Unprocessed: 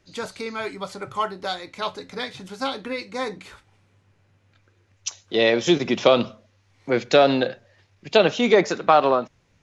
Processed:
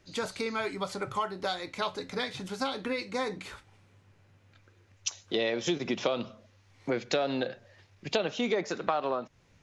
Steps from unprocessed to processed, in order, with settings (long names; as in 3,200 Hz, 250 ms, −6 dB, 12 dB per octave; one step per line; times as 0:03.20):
downward compressor 4 to 1, threshold −28 dBFS, peak gain reduction 14.5 dB